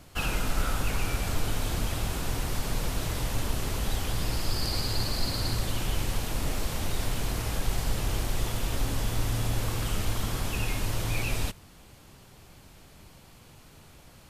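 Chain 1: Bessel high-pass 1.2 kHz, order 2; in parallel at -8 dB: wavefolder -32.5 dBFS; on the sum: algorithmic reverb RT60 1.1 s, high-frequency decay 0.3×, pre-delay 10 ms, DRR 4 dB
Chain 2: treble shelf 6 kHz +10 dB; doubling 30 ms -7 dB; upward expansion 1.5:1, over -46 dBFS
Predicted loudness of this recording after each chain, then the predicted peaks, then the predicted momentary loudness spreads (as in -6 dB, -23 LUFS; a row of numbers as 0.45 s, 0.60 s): -32.0 LUFS, -31.0 LUFS; -18.0 dBFS, -13.5 dBFS; 4 LU, 3 LU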